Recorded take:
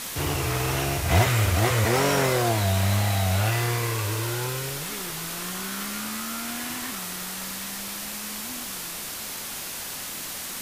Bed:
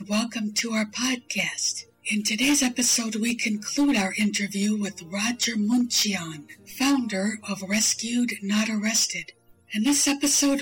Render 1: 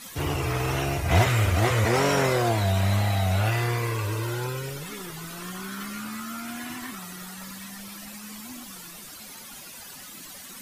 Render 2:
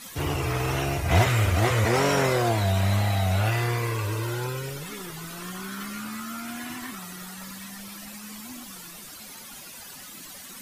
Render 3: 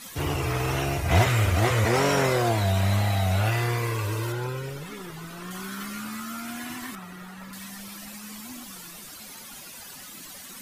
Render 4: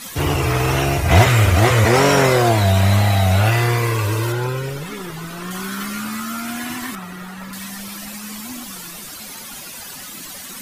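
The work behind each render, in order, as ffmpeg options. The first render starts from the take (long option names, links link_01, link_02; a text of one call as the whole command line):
ffmpeg -i in.wav -af "afftdn=noise_reduction=13:noise_floor=-35" out.wav
ffmpeg -i in.wav -af anull out.wav
ffmpeg -i in.wav -filter_complex "[0:a]asettb=1/sr,asplit=3[link_01][link_02][link_03];[link_01]atrim=end=4.324[link_04];[link_02]atrim=start=4.32:end=5.51,asetpts=PTS-STARTPTS,afade=type=in:duration=0.004:curve=qsin,afade=type=out:start_time=1.186:duration=0.004:curve=qsin,highshelf=frequency=3600:gain=-8[link_05];[link_03]atrim=start=5.506[link_06];[link_04][link_05]acrossfade=duration=0.004:curve1=hsin:curve2=qsin[link_07];[link_07][link_06]acrossfade=duration=0.004:curve1=qsin:curve2=hsin,asettb=1/sr,asplit=3[link_08][link_09][link_10];[link_08]atrim=end=6.954[link_11];[link_09]atrim=start=6.95:end=7.53,asetpts=PTS-STARTPTS,afade=type=in:duration=0.004:curve=qsin,afade=type=out:start_time=0.576:duration=0.004:curve=qsin,acrossover=split=2900[link_12][link_13];[link_13]acompressor=threshold=-54dB:ratio=4:attack=1:release=60[link_14];[link_12][link_14]amix=inputs=2:normalize=0[link_15];[link_10]atrim=start=7.526[link_16];[link_11][link_15]acrossfade=duration=0.004:curve1=hsin:curve2=qsin[link_17];[link_17][link_16]acrossfade=duration=0.004:curve1=qsin:curve2=hsin" out.wav
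ffmpeg -i in.wav -af "volume=8.5dB,alimiter=limit=-1dB:level=0:latency=1" out.wav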